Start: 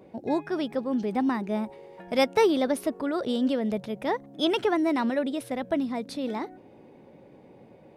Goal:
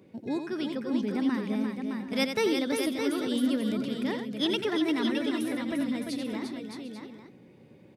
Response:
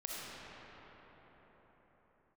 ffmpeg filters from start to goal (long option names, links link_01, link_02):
-af "highpass=86,equalizer=frequency=730:width=1:gain=-13.5,aecho=1:1:87|348|614|747|840:0.398|0.473|0.473|0.119|0.211"